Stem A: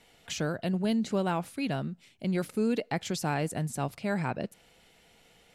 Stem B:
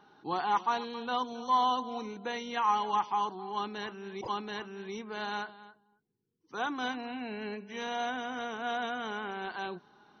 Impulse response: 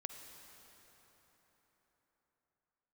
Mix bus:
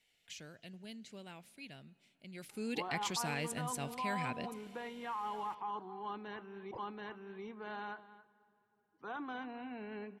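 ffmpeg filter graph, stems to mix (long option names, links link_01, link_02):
-filter_complex "[0:a]highshelf=frequency=1600:width_type=q:width=1.5:gain=8.5,volume=-11.5dB,afade=type=in:start_time=2.33:duration=0.44:silence=0.251189,asplit=2[link_01][link_02];[link_02]volume=-13dB[link_03];[1:a]lowpass=2300,alimiter=level_in=2dB:limit=-24dB:level=0:latency=1:release=15,volume=-2dB,adelay=2500,volume=-7.5dB,asplit=2[link_04][link_05];[link_05]volume=-14dB[link_06];[2:a]atrim=start_sample=2205[link_07];[link_03][link_06]amix=inputs=2:normalize=0[link_08];[link_08][link_07]afir=irnorm=-1:irlink=0[link_09];[link_01][link_04][link_09]amix=inputs=3:normalize=0"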